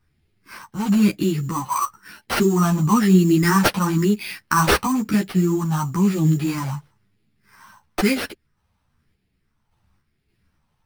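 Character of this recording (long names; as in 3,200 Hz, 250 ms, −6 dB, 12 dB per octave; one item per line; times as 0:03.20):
phaser sweep stages 4, 1 Hz, lowest notch 380–1,100 Hz
aliases and images of a low sample rate 7,100 Hz, jitter 0%
sample-and-hold tremolo
a shimmering, thickened sound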